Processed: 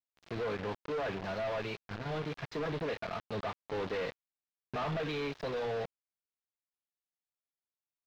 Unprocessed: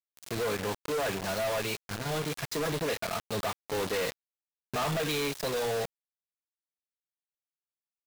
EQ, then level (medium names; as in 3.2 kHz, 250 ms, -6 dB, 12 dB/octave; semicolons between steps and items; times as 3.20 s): distance through air 240 m; -3.5 dB